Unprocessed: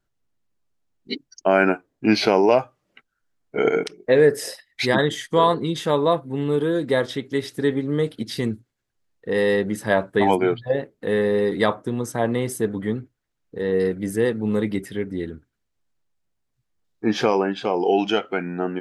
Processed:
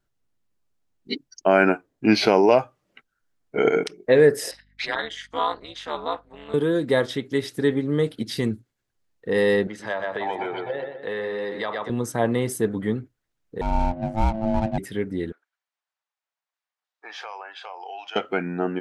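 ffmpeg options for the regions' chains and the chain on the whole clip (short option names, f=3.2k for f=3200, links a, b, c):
-filter_complex "[0:a]asettb=1/sr,asplit=3[a][b][c];[a]atrim=end=4.514[d];[b]atrim=start=4.51:end=6.54,asetpts=PTS-STARTPTS,afade=t=in:d=0.004:c=qsin,afade=t=out:st=2.026:d=0.004:c=qsin,highpass=780,lowpass=5k,tremolo=f=230:d=0.889,aeval=exprs='val(0)+0.001*(sin(2*PI*50*n/s)+sin(2*PI*2*50*n/s)/2+sin(2*PI*3*50*n/s)/3+sin(2*PI*4*50*n/s)/4+sin(2*PI*5*50*n/s)/5)':c=same[e];[c]atrim=start=6.536[f];[d][e]acrossfade=d=0.004:c1=hsin:c2=qsin[g];[g][f]acrossfade=d=0.004:c1=qsin:c2=hsin,asettb=1/sr,asplit=3[h][i][j];[h]atrim=end=9.674[k];[i]atrim=start=9.67:end=11.9,asetpts=PTS-STARTPTS,afade=t=in:d=0.004:c=qsin,afade=t=out:st=2.226:d=0.004:c=qsin,asplit=2[l][m];[m]adelay=123,lowpass=f=4.6k:p=1,volume=-8dB,asplit=2[n][o];[o]adelay=123,lowpass=f=4.6k:p=1,volume=0.46,asplit=2[p][q];[q]adelay=123,lowpass=f=4.6k:p=1,volume=0.46,asplit=2[r][s];[s]adelay=123,lowpass=f=4.6k:p=1,volume=0.46,asplit=2[t][u];[u]adelay=123,lowpass=f=4.6k:p=1,volume=0.46[v];[l][n][p][r][t][v]amix=inputs=6:normalize=0,atrim=end_sample=98343,acompressor=threshold=-19dB:ratio=10:attack=3.2:release=140:knee=1:detection=peak,acrossover=split=480 6200:gain=0.224 1 0.0631[w][x][y];[w][x][y]amix=inputs=3:normalize=0[z];[j]atrim=start=11.896[aa];[k][z]acrossfade=d=0.004:c1=hsin:c2=qsin[ab];[ab][aa]acrossfade=d=0.004:c1=qsin:c2=hsin,asettb=1/sr,asplit=3[ac][ad][ae];[ac]atrim=end=13.614[af];[ad]atrim=start=13.61:end=14.78,asetpts=PTS-STARTPTS,afade=t=in:d=0.004:c=qsin,afade=t=out:st=1.166:d=0.004:c=qsin,aeval=exprs='val(0)*sin(2*PI*440*n/s)':c=same,tiltshelf=f=740:g=4.5,adynamicsmooth=sensitivity=6.5:basefreq=1k[ag];[ae]atrim=start=14.776[ah];[af][ag]acrossfade=d=0.004:c1=hsin:c2=qsin[ai];[ai][ah]acrossfade=d=0.004:c1=qsin:c2=hsin,asettb=1/sr,asplit=3[aj][ak][al];[aj]atrim=end=15.324[am];[ak]atrim=start=15.32:end=18.16,asetpts=PTS-STARTPTS,afade=t=in:d=0.004:c=qsin,afade=t=out:st=2.836:d=0.004:c=qsin,highpass=f=740:w=0.5412,highpass=f=740:w=1.3066,aemphasis=mode=reproduction:type=50kf,acompressor=threshold=-37dB:ratio=2.5:attack=3.2:release=140:knee=1:detection=peak[an];[al]atrim=start=18.156[ao];[am][an]acrossfade=d=0.004:c1=hsin:c2=qsin[ap];[ap][ao]acrossfade=d=0.004:c1=qsin:c2=hsin"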